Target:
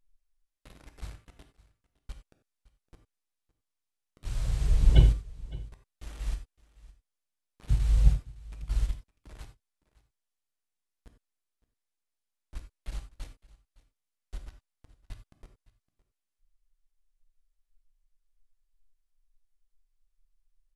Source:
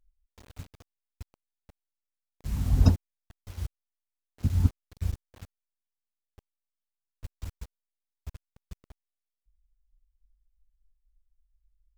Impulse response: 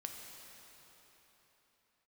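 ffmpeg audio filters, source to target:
-filter_complex "[0:a]asetrate=25442,aresample=44100,aecho=1:1:562:0.0891[link_01];[1:a]atrim=start_sample=2205,atrim=end_sample=4410[link_02];[link_01][link_02]afir=irnorm=-1:irlink=0,volume=4.5dB"

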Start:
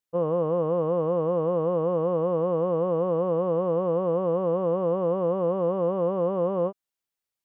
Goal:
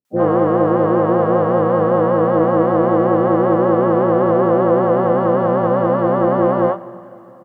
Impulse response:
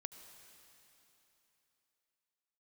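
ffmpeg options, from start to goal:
-filter_complex "[0:a]highpass=frequency=190:poles=1,equalizer=frequency=1300:width_type=o:width=0.25:gain=9,asplit=4[link_01][link_02][link_03][link_04];[link_02]asetrate=29433,aresample=44100,atempo=1.49831,volume=-5dB[link_05];[link_03]asetrate=52444,aresample=44100,atempo=0.840896,volume=-13dB[link_06];[link_04]asetrate=66075,aresample=44100,atempo=0.66742,volume=-13dB[link_07];[link_01][link_05][link_06][link_07]amix=inputs=4:normalize=0,acontrast=52,acrossover=split=470[link_08][link_09];[link_09]adelay=50[link_10];[link_08][link_10]amix=inputs=2:normalize=0,asplit=2[link_11][link_12];[1:a]atrim=start_sample=2205[link_13];[link_12][link_13]afir=irnorm=-1:irlink=0,volume=0dB[link_14];[link_11][link_14]amix=inputs=2:normalize=0,volume=1.5dB"

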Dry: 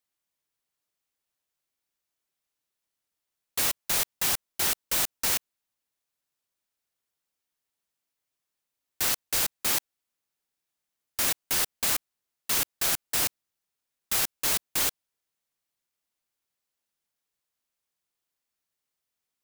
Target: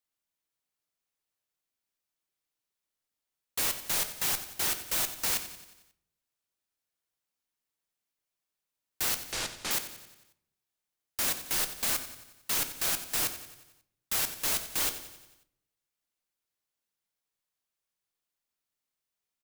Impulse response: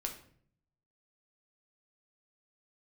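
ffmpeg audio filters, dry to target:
-filter_complex "[0:a]asettb=1/sr,asplit=3[link_01][link_02][link_03];[link_01]atrim=end=9.204[link_04];[link_02]atrim=start=9.2:end=9.71,asetpts=PTS-STARTPTS,afade=type=in:duration=0.004:curve=qsin,afade=type=out:start_time=0.506:duration=0.004:curve=qsin,lowpass=6800[link_05];[link_03]atrim=start=9.706[link_06];[link_04][link_05]acrossfade=duration=0.004:curve1=hsin:curve2=qsin[link_07];[link_07][link_06]acrossfade=duration=0.004:curve1=qsin:curve2=hsin,aecho=1:1:90|180|270|360|450|540:0.224|0.125|0.0702|0.0393|0.022|0.0123,asplit=2[link_08][link_09];[1:a]atrim=start_sample=2205[link_10];[link_09][link_10]afir=irnorm=-1:irlink=0,volume=-2dB[link_11];[link_08][link_11]amix=inputs=2:normalize=0,volume=-8dB"

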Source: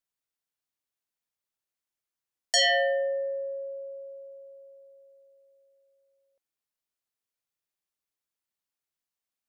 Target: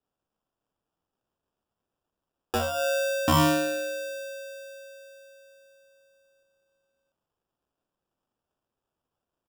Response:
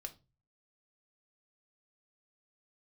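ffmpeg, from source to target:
-filter_complex "[0:a]acrossover=split=660|5000[link_01][link_02][link_03];[link_01]adelay=50[link_04];[link_02]adelay=740[link_05];[link_04][link_05][link_03]amix=inputs=3:normalize=0,acrusher=samples=21:mix=1:aa=0.000001,volume=4dB"

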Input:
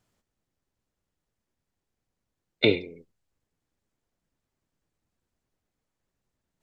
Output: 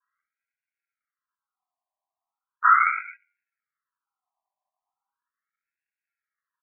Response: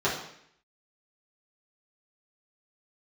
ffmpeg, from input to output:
-filter_complex "[0:a]asubboost=boost=10:cutoff=55,acrossover=split=260[link_01][link_02];[link_01]acontrast=83[link_03];[link_03][link_02]amix=inputs=2:normalize=0[link_04];[1:a]atrim=start_sample=2205[link_05];[link_04][link_05]afir=irnorm=-1:irlink=0,afwtdn=0.0355,acontrast=59,aresample=8000,acrusher=samples=9:mix=1:aa=0.000001,aresample=44100,afftfilt=real='re*between(b*sr/1024,840*pow(2000/840,0.5+0.5*sin(2*PI*0.38*pts/sr))/1.41,840*pow(2000/840,0.5+0.5*sin(2*PI*0.38*pts/sr))*1.41)':imag='im*between(b*sr/1024,840*pow(2000/840,0.5+0.5*sin(2*PI*0.38*pts/sr))/1.41,840*pow(2000/840,0.5+0.5*sin(2*PI*0.38*pts/sr))*1.41)':win_size=1024:overlap=0.75"

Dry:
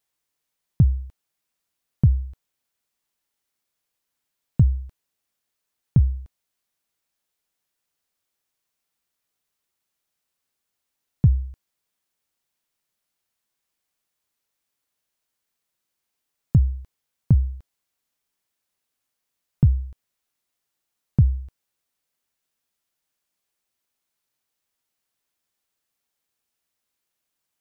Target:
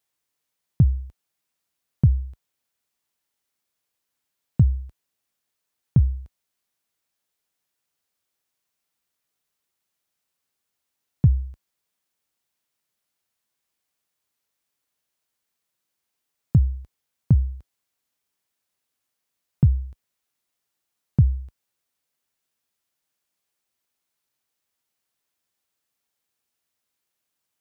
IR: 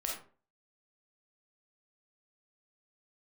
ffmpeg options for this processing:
-af "highpass=44"

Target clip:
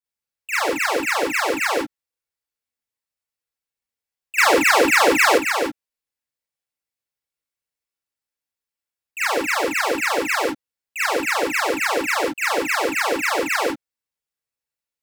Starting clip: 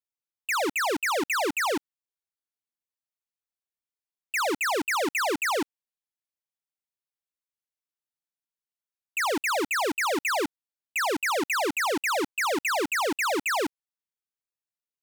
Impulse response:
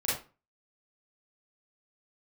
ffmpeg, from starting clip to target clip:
-filter_complex "[1:a]atrim=start_sample=2205,atrim=end_sample=3969[link_01];[0:a][link_01]afir=irnorm=-1:irlink=0,asettb=1/sr,asplit=3[link_02][link_03][link_04];[link_02]atrim=end=4.384[link_05];[link_03]atrim=start=4.38:end=5.38,asetpts=PTS-STARTPTS,afade=type=in:duration=0.004:curve=qsin,afade=type=out:start_time=0.996:duration=0.004:curve=qsin,acontrast=79[link_06];[link_04]atrim=start=5.376[link_07];[link_05][link_06]acrossfade=duration=0.004:curve1=hsin:curve2=qsin[link_08];[link_08][link_07]acrossfade=duration=0.004:curve1=qsin:curve2=hsin,volume=-2dB"

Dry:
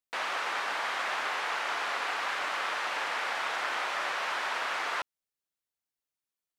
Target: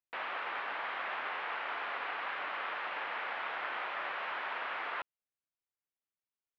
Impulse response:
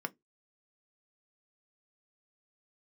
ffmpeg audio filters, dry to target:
-af "lowpass=frequency=3100:width=0.5412,lowpass=frequency=3100:width=1.3066,volume=-5.5dB"

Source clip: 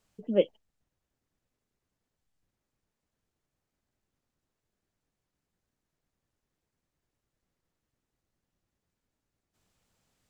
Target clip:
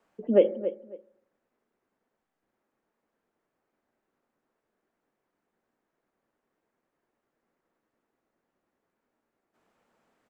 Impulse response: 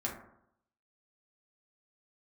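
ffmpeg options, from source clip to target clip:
-filter_complex "[0:a]acrossover=split=230 2100:gain=0.0794 1 0.141[link_01][link_02][link_03];[link_01][link_02][link_03]amix=inputs=3:normalize=0,asplit=2[link_04][link_05];[link_05]adelay=272,lowpass=frequency=2000:poles=1,volume=-15dB,asplit=2[link_06][link_07];[link_07]adelay=272,lowpass=frequency=2000:poles=1,volume=0.21[link_08];[link_04][link_06][link_08]amix=inputs=3:normalize=0,asplit=2[link_09][link_10];[1:a]atrim=start_sample=2205[link_11];[link_10][link_11]afir=irnorm=-1:irlink=0,volume=-15dB[link_12];[link_09][link_12]amix=inputs=2:normalize=0,alimiter=level_in=15dB:limit=-1dB:release=50:level=0:latency=1,volume=-7dB"

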